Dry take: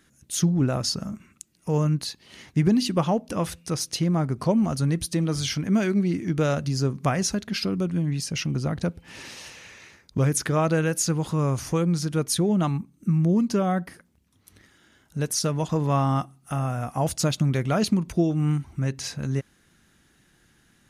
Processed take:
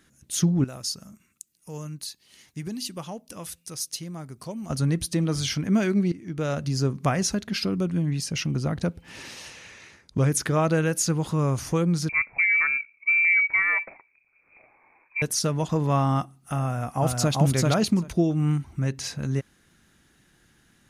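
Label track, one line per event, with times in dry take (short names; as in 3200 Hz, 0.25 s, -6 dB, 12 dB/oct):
0.640000	4.700000	pre-emphasis coefficient 0.8
6.120000	6.750000	fade in, from -16.5 dB
9.460000	10.310000	brick-wall FIR low-pass 12000 Hz
12.090000	15.220000	inverted band carrier 2500 Hz
16.630000	17.350000	echo throw 0.39 s, feedback 10%, level -1.5 dB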